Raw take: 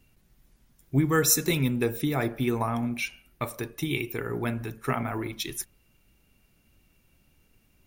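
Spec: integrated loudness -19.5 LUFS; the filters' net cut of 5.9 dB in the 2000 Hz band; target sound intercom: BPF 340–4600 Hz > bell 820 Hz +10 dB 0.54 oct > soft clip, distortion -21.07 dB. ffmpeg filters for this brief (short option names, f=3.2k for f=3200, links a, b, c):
-af "highpass=340,lowpass=4.6k,equalizer=f=820:t=o:w=0.54:g=10,equalizer=f=2k:t=o:g=-8,asoftclip=threshold=-15.5dB,volume=13dB"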